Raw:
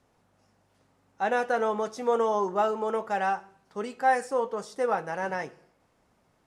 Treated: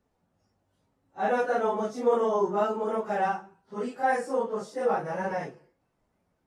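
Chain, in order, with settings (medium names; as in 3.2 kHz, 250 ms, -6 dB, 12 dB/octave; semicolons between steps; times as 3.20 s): phase randomisation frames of 100 ms; tilt shelf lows +3.5 dB, about 670 Hz; spectral noise reduction 8 dB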